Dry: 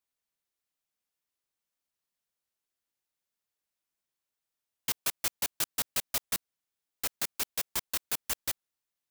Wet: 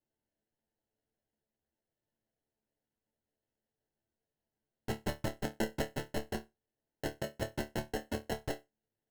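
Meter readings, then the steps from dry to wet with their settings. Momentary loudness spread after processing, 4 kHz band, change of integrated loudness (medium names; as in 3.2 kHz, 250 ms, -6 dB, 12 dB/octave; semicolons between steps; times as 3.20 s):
6 LU, -10.0 dB, -7.0 dB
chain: sample-and-hold 37×; chord resonator D2 fifth, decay 0.2 s; trim +5 dB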